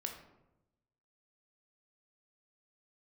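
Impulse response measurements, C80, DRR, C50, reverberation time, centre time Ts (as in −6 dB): 9.5 dB, 2.5 dB, 7.0 dB, 0.95 s, 24 ms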